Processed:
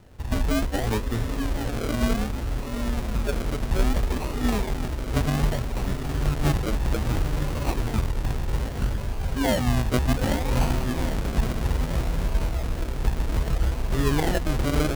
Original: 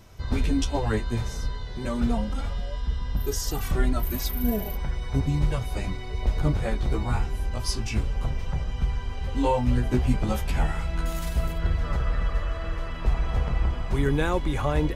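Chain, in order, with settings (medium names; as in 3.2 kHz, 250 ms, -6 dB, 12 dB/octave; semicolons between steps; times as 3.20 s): echo that smears into a reverb 906 ms, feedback 41%, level -4.5 dB; decimation with a swept rate 39×, swing 60% 0.63 Hz; formant shift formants +2 st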